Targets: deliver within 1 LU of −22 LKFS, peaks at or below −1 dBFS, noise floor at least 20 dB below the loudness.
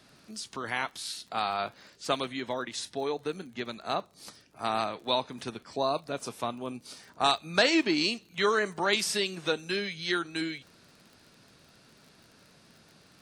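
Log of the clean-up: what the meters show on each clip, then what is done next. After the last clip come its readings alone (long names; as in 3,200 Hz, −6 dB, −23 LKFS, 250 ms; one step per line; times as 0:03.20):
crackle rate 36 per second; integrated loudness −30.5 LKFS; sample peak −10.5 dBFS; target loudness −22.0 LKFS
→ click removal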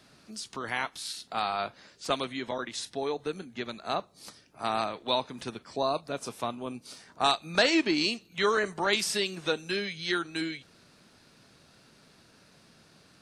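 crackle rate 0.076 per second; integrated loudness −30.5 LKFS; sample peak −10.5 dBFS; target loudness −22.0 LKFS
→ level +8.5 dB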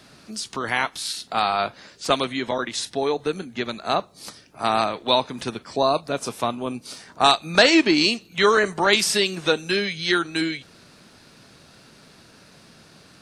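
integrated loudness −22.0 LKFS; sample peak −2.0 dBFS; background noise floor −52 dBFS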